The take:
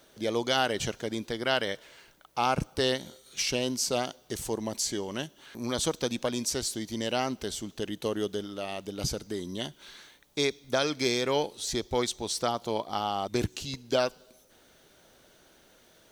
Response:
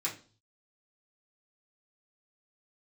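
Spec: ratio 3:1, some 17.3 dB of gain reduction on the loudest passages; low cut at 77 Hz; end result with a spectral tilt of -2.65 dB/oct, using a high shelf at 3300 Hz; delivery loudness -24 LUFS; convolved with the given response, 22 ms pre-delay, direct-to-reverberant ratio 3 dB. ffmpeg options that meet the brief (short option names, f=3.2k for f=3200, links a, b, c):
-filter_complex "[0:a]highpass=77,highshelf=f=3.3k:g=5.5,acompressor=threshold=-45dB:ratio=3,asplit=2[a][b];[1:a]atrim=start_sample=2205,adelay=22[c];[b][c]afir=irnorm=-1:irlink=0,volume=-7dB[d];[a][d]amix=inputs=2:normalize=0,volume=18.5dB"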